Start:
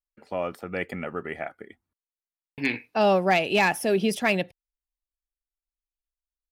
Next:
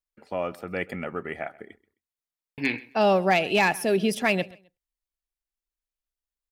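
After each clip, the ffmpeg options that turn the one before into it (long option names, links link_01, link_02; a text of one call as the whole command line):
ffmpeg -i in.wav -af "aecho=1:1:131|262:0.0794|0.0191" out.wav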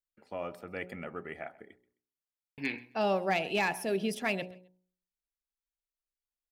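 ffmpeg -i in.wav -af "bandreject=frequency=60.86:width_type=h:width=4,bandreject=frequency=121.72:width_type=h:width=4,bandreject=frequency=182.58:width_type=h:width=4,bandreject=frequency=243.44:width_type=h:width=4,bandreject=frequency=304.3:width_type=h:width=4,bandreject=frequency=365.16:width_type=h:width=4,bandreject=frequency=426.02:width_type=h:width=4,bandreject=frequency=486.88:width_type=h:width=4,bandreject=frequency=547.74:width_type=h:width=4,bandreject=frequency=608.6:width_type=h:width=4,bandreject=frequency=669.46:width_type=h:width=4,bandreject=frequency=730.32:width_type=h:width=4,bandreject=frequency=791.18:width_type=h:width=4,bandreject=frequency=852.04:width_type=h:width=4,bandreject=frequency=912.9:width_type=h:width=4,bandreject=frequency=973.76:width_type=h:width=4,bandreject=frequency=1034.62:width_type=h:width=4,volume=-8dB" out.wav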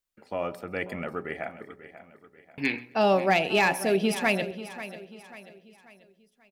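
ffmpeg -i in.wav -af "aecho=1:1:539|1078|1617|2156:0.2|0.0818|0.0335|0.0138,volume=7dB" out.wav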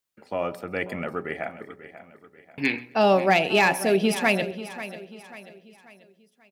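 ffmpeg -i in.wav -af "highpass=70,volume=3dB" out.wav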